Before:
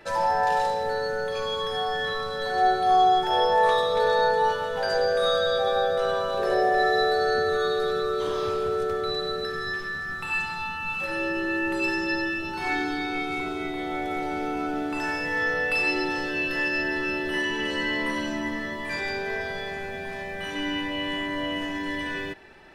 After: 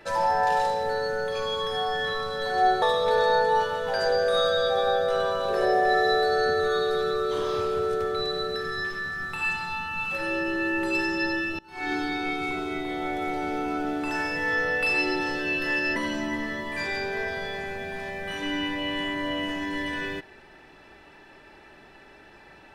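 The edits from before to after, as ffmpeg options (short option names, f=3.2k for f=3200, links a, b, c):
-filter_complex "[0:a]asplit=4[a][b][c][d];[a]atrim=end=2.822[e];[b]atrim=start=3.708:end=12.48,asetpts=PTS-STARTPTS,afade=t=out:st=8.768:d=0.004:c=hsin:silence=0.0668344[f];[c]atrim=start=12.48:end=16.852,asetpts=PTS-STARTPTS,afade=t=in:d=0.34:c=qua:silence=0.0668344[g];[d]atrim=start=18.088[h];[f][g]concat=n=2:v=0:a=1[i];[e][i]acrossfade=d=0.004:c1=hsin:c2=hsin[j];[j][h]acrossfade=d=0.004:c1=hsin:c2=hsin"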